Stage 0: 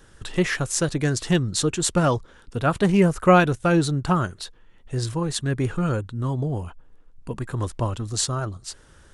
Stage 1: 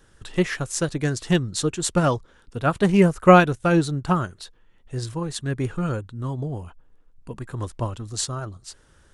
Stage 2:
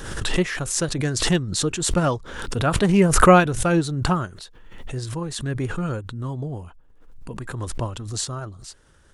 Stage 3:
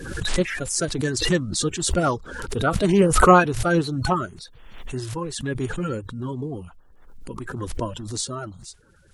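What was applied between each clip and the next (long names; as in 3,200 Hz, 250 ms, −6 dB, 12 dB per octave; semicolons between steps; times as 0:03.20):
expander for the loud parts 1.5 to 1, over −27 dBFS; level +3.5 dB
background raised ahead of every attack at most 49 dB per second; level −1 dB
spectral magnitudes quantised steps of 30 dB; level that may rise only so fast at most 230 dB per second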